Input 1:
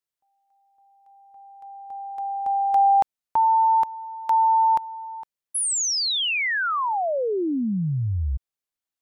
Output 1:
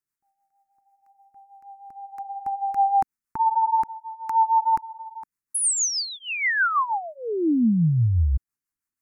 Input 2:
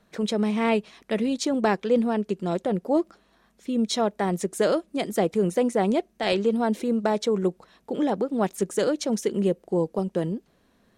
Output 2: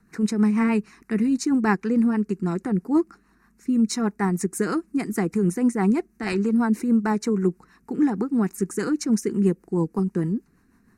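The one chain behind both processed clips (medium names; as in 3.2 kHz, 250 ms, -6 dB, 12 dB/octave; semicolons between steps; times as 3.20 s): peaking EQ 270 Hz +3 dB 1.1 oct; static phaser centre 1.4 kHz, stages 4; rotary cabinet horn 6.3 Hz; trim +6 dB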